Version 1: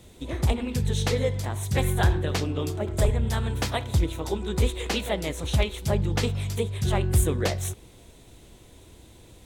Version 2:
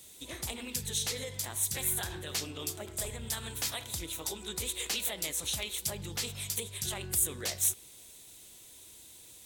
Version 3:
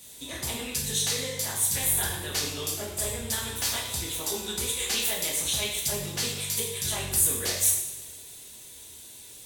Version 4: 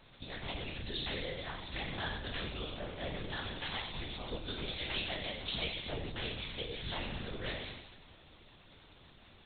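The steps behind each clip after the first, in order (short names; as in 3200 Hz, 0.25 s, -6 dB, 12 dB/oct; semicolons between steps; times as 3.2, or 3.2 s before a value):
low shelf 77 Hz -10 dB; limiter -20.5 dBFS, peak gain reduction 8 dB; pre-emphasis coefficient 0.9; gain +7 dB
two-slope reverb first 0.73 s, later 2.5 s, DRR -3 dB; gain +2 dB
in parallel at -7 dB: bit-crush 6-bit; on the sum: added noise pink -51 dBFS; LPC vocoder at 8 kHz whisper; gain -8.5 dB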